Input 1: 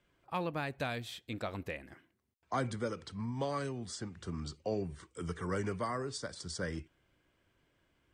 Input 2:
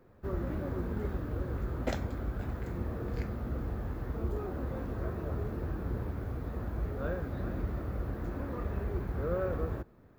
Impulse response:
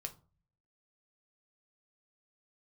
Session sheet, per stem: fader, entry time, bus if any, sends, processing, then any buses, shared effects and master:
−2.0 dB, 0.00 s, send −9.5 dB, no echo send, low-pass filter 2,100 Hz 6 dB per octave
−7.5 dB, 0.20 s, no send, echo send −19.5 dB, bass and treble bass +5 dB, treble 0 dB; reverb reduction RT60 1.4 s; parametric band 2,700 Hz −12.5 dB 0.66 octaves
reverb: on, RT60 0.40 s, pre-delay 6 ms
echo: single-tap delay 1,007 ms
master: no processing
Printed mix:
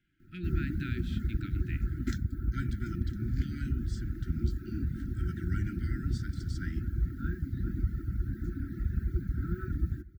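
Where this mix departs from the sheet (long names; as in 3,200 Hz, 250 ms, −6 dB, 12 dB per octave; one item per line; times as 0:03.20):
stem 2 −7.5 dB → +1.5 dB
master: extra linear-phase brick-wall band-stop 370–1,300 Hz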